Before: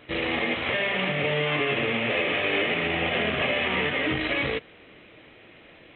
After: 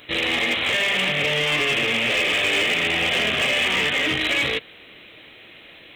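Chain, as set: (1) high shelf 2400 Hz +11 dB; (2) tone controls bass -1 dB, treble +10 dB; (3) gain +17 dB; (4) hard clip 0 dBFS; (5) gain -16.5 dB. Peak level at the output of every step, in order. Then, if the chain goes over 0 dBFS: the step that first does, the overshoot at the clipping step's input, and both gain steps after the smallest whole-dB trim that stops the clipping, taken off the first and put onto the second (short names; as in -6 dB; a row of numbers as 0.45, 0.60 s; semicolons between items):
-9.0, -8.0, +9.0, 0.0, -16.5 dBFS; step 3, 9.0 dB; step 3 +8 dB, step 5 -7.5 dB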